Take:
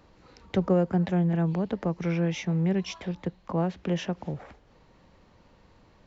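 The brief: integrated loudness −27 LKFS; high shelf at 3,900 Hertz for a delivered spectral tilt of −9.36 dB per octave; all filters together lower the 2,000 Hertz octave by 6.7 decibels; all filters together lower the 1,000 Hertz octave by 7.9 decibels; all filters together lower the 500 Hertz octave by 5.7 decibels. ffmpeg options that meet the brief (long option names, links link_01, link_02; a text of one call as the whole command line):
ffmpeg -i in.wav -af "equalizer=frequency=500:width_type=o:gain=-5.5,equalizer=frequency=1000:width_type=o:gain=-7.5,equalizer=frequency=2000:width_type=o:gain=-4.5,highshelf=frequency=3900:gain=-6,volume=2.5dB" out.wav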